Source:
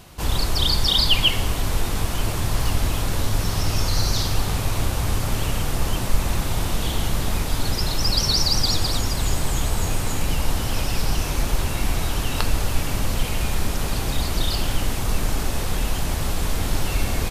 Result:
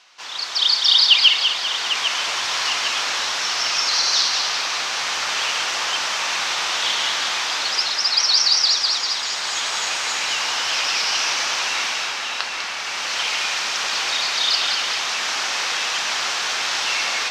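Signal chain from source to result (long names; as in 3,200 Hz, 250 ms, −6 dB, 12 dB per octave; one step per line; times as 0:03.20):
high-pass filter 1,400 Hz 12 dB per octave
parametric band 5,800 Hz +7.5 dB 0.76 octaves
automatic gain control gain up to 10.5 dB
high-frequency loss of the air 160 metres
echo with a time of its own for lows and highs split 2,800 Hz, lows 797 ms, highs 198 ms, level −5 dB
level +2 dB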